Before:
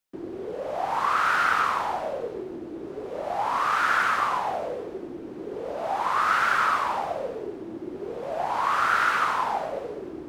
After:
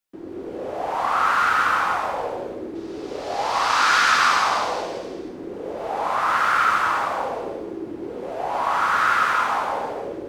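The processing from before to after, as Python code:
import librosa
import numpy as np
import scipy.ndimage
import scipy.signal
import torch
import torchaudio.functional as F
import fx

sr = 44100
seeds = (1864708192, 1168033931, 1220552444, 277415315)

y = fx.peak_eq(x, sr, hz=4900.0, db=14.5, octaves=1.7, at=(2.75, 5.0))
y = y + 10.0 ** (-8.5 / 20.0) * np.pad(y, (int(164 * sr / 1000.0), 0))[:len(y)]
y = fx.rev_gated(y, sr, seeds[0], gate_ms=360, shape='flat', drr_db=-2.0)
y = y * librosa.db_to_amplitude(-1.5)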